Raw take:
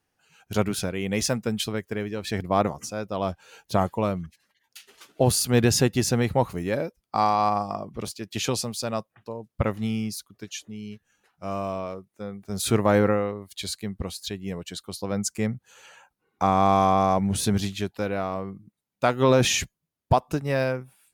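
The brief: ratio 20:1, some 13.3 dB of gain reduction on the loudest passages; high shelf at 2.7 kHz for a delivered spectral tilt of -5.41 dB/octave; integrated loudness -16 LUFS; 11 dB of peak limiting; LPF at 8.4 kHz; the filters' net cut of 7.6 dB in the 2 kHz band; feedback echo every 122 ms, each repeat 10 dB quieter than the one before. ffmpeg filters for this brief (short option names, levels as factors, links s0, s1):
-af "lowpass=8400,equalizer=f=2000:t=o:g=-6.5,highshelf=f=2700:g=-8.5,acompressor=threshold=0.0398:ratio=20,alimiter=level_in=1.58:limit=0.0631:level=0:latency=1,volume=0.631,aecho=1:1:122|244|366|488:0.316|0.101|0.0324|0.0104,volume=13.3"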